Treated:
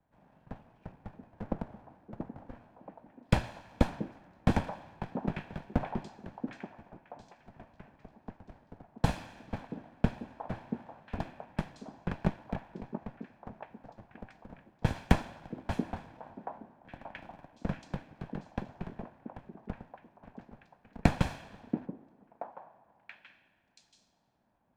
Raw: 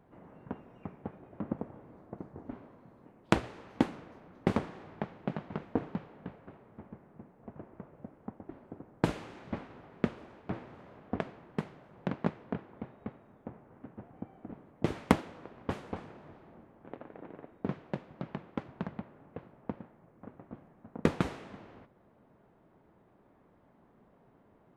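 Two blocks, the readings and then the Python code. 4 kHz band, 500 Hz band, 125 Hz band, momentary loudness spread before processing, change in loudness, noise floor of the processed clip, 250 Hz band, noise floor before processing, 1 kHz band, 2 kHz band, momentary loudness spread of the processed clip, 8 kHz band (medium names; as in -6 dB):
+1.0 dB, -2.0 dB, +4.5 dB, 20 LU, +1.0 dB, -70 dBFS, 0.0 dB, -64 dBFS, +1.0 dB, +1.0 dB, 22 LU, +1.5 dB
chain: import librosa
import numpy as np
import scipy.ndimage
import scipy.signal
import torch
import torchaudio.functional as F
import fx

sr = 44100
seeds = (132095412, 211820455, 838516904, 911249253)

y = fx.lower_of_two(x, sr, delay_ms=1.2)
y = fx.echo_stepped(y, sr, ms=680, hz=300.0, octaves=1.4, feedback_pct=70, wet_db=-0.5)
y = fx.band_widen(y, sr, depth_pct=40)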